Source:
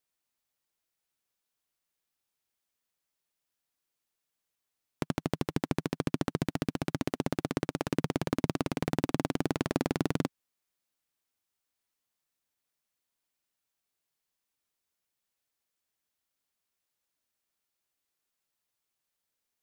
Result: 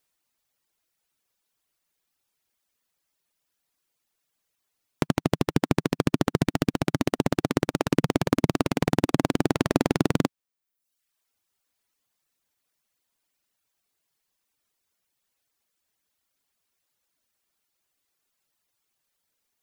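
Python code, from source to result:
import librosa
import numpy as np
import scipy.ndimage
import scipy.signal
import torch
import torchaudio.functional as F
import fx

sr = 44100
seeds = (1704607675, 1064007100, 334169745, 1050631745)

y = fx.dereverb_blind(x, sr, rt60_s=0.84)
y = y * librosa.db_to_amplitude(8.5)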